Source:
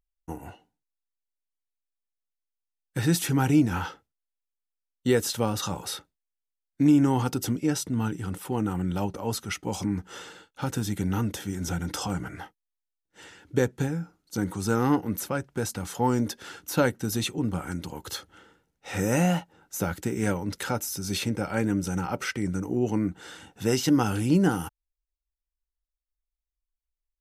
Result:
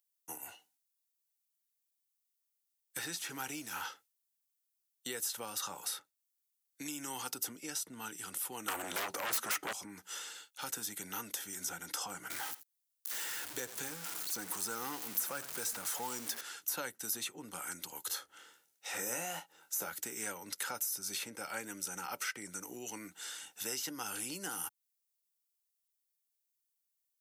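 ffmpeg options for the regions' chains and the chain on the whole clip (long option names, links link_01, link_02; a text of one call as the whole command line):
ffmpeg -i in.wav -filter_complex "[0:a]asettb=1/sr,asplit=3[link_01][link_02][link_03];[link_01]atrim=end=2.974[link_04];[link_02]atrim=start=2.97:end=3.82,asetpts=PTS-STARTPTS,afade=type=in:duration=0.004:curve=qsin,afade=type=out:start_time=0.846:duration=0.004:curve=qsin,aeval=exprs='sgn(val(0))*max(abs(val(0))-0.00355,0)':channel_layout=same,acrossover=split=6300[link_05][link_06];[link_06]acompressor=threshold=-46dB:ratio=4:attack=1:release=60[link_07];[link_05][link_07]amix=inputs=2:normalize=0[link_08];[link_03]atrim=start=3.816[link_09];[link_04][link_08]acrossfade=duration=0.004:curve1=hsin:curve2=qsin[link_10];[link_10][link_09]acrossfade=duration=0.004:curve1=qsin:curve2=hsin,asettb=1/sr,asplit=3[link_11][link_12][link_13];[link_11]atrim=end=8.684[link_14];[link_12]atrim=start=8.68:end=9.73,asetpts=PTS-STARTPTS,afade=type=in:duration=0.004:curve=qsin,afade=type=out:start_time=1.046:duration=0.004:curve=qsin,highpass=110,bandreject=frequency=180:width=6,aeval=exprs='0.133*sin(PI/2*5.01*val(0)/0.133)':channel_layout=same[link_15];[link_13]atrim=start=9.726[link_16];[link_14][link_15]acrossfade=duration=0.004:curve1=hsin:curve2=qsin[link_17];[link_17][link_16]acrossfade=duration=0.004:curve1=qsin:curve2=hsin,asettb=1/sr,asplit=3[link_18][link_19][link_20];[link_18]atrim=end=12.304[link_21];[link_19]atrim=start=12.3:end=16.41,asetpts=PTS-STARTPTS,afade=type=in:duration=0.004:curve=qsin,afade=type=out:start_time=4.106:duration=0.004:curve=qsin,aeval=exprs='val(0)+0.5*0.0237*sgn(val(0))':channel_layout=same,aecho=1:1:84:0.126,atrim=end_sample=181251[link_22];[link_20]atrim=start=16.406[link_23];[link_21][link_22]acrossfade=duration=0.004:curve1=hsin:curve2=qsin[link_24];[link_24][link_23]acrossfade=duration=0.004:curve1=qsin:curve2=hsin,asettb=1/sr,asplit=3[link_25][link_26][link_27];[link_25]atrim=end=18.074[link_28];[link_26]atrim=start=18.07:end=19.9,asetpts=PTS-STARTPTS,afade=type=in:duration=0.004:curve=qsin,afade=type=out:start_time=1.826:duration=0.004:curve=qsin,equalizer=frequency=490:width_type=o:width=2.5:gain=3.5,asplit=2[link_29][link_30];[link_30]adelay=25,volume=-8dB[link_31];[link_29][link_31]amix=inputs=2:normalize=0,atrim=end_sample=80703[link_32];[link_27]atrim=start=19.896[link_33];[link_28][link_32]acrossfade=duration=0.004:curve1=hsin:curve2=qsin[link_34];[link_34][link_33]acrossfade=duration=0.004:curve1=qsin:curve2=hsin,acrossover=split=180|1800[link_35][link_36][link_37];[link_35]acompressor=threshold=-37dB:ratio=4[link_38];[link_36]acompressor=threshold=-28dB:ratio=4[link_39];[link_37]acompressor=threshold=-48dB:ratio=4[link_40];[link_38][link_39][link_40]amix=inputs=3:normalize=0,aderivative,volume=9.5dB" out.wav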